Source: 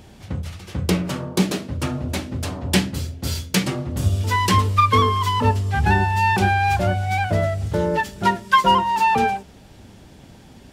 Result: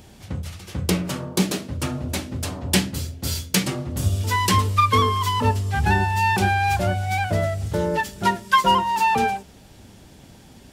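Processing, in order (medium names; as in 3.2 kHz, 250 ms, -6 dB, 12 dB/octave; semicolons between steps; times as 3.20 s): treble shelf 5.4 kHz +7 dB; trim -2 dB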